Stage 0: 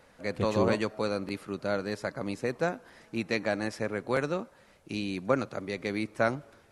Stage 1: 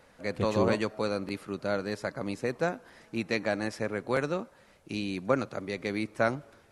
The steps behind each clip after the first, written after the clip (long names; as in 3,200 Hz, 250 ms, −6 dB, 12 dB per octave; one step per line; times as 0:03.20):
no processing that can be heard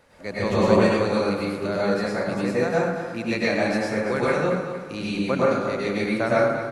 on a send: repeating echo 230 ms, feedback 42%, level −11 dB
on the sum: dense smooth reverb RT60 0.94 s, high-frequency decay 0.55×, pre-delay 90 ms, DRR −7 dB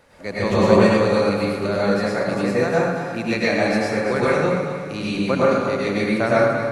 echo machine with several playback heads 79 ms, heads first and third, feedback 61%, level −14 dB
level +3 dB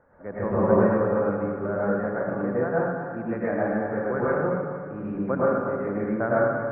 elliptic low-pass filter 1,600 Hz, stop band 70 dB
level −5 dB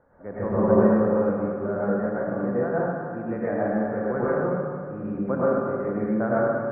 high-shelf EQ 2,000 Hz −9 dB
four-comb reverb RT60 1.3 s, combs from 29 ms, DRR 6.5 dB